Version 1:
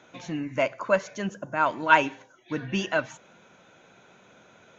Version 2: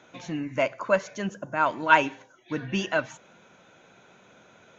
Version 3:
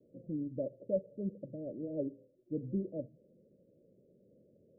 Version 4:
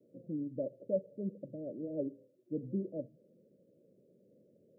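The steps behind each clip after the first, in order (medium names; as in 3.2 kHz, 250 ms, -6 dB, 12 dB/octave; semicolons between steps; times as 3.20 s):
no audible change
steep low-pass 580 Hz 96 dB/octave; trim -6 dB
high-pass 130 Hz 12 dB/octave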